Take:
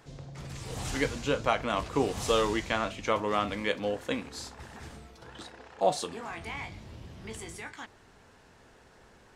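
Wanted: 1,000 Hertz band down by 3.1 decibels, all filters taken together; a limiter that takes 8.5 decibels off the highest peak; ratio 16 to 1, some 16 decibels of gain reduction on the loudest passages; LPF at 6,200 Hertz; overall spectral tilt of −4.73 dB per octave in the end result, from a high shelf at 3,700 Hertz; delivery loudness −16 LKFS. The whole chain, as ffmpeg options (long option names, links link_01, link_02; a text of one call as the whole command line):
ffmpeg -i in.wav -af "lowpass=6200,equalizer=frequency=1000:width_type=o:gain=-3.5,highshelf=frequency=3700:gain=-8.5,acompressor=threshold=-38dB:ratio=16,volume=30dB,alimiter=limit=-3.5dB:level=0:latency=1" out.wav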